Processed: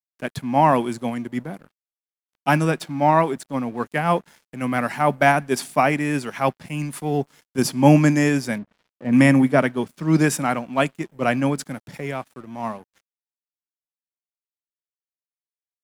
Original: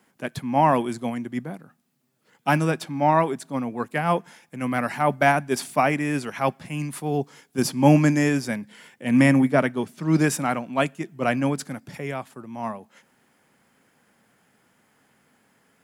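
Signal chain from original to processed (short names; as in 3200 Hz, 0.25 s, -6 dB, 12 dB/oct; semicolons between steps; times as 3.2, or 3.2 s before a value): 8.58–9.13 Bessel low-pass 1000 Hz, order 2; crossover distortion -49.5 dBFS; gain +2.5 dB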